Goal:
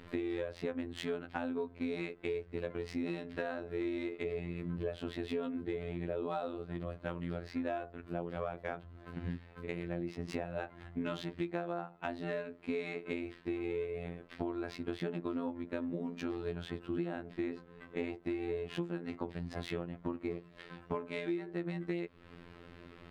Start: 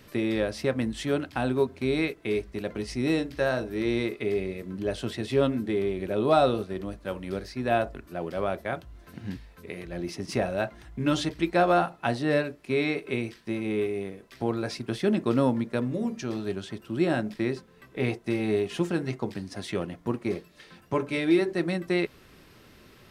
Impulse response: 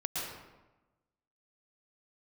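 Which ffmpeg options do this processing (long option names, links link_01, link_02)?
-af "afftfilt=real='hypot(re,im)*cos(PI*b)':imag='0':win_size=2048:overlap=0.75,acompressor=threshold=-37dB:ratio=12,equalizer=frequency=5700:width=2.7:gain=-7,adynamicsmooth=sensitivity=5.5:basefreq=3300,volume=4dB"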